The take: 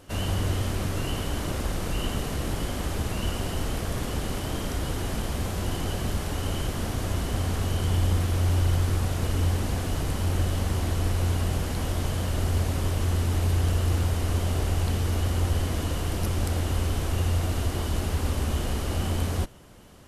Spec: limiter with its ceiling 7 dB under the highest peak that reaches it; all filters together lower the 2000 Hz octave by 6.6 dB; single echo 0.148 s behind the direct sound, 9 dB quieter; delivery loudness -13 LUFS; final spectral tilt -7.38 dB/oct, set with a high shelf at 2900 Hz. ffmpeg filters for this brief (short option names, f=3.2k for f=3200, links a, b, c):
-af "equalizer=f=2k:t=o:g=-5.5,highshelf=f=2.9k:g=-8.5,alimiter=limit=-21dB:level=0:latency=1,aecho=1:1:148:0.355,volume=16.5dB"